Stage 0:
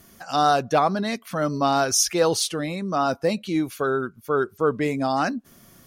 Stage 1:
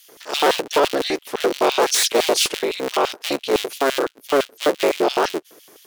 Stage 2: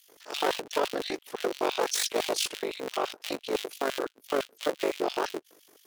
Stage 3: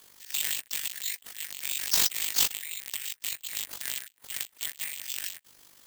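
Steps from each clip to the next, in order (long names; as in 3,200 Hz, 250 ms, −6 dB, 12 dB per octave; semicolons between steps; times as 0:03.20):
sub-harmonics by changed cycles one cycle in 3, inverted; hard clipping −18 dBFS, distortion −12 dB; auto-filter high-pass square 5.9 Hz 400–3,100 Hz; level +3.5 dB
amplitude modulation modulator 49 Hz, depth 55%; level −7.5 dB
elliptic high-pass filter 1,800 Hz; bad sample-rate conversion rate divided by 4×, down none, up zero stuff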